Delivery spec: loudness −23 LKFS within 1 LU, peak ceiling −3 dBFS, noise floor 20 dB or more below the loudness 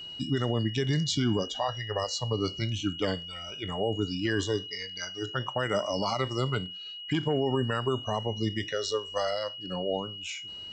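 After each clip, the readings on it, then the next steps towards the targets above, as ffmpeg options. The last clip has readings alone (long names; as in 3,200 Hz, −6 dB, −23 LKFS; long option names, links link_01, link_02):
interfering tone 2,900 Hz; level of the tone −39 dBFS; integrated loudness −30.5 LKFS; sample peak −17.0 dBFS; target loudness −23.0 LKFS
→ -af "bandreject=frequency=2900:width=30"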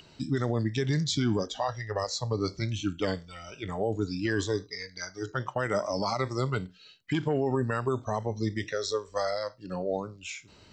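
interfering tone none found; integrated loudness −31.0 LKFS; sample peak −17.5 dBFS; target loudness −23.0 LKFS
→ -af "volume=8dB"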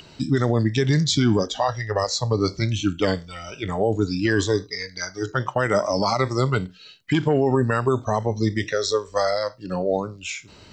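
integrated loudness −23.0 LKFS; sample peak −9.5 dBFS; background noise floor −48 dBFS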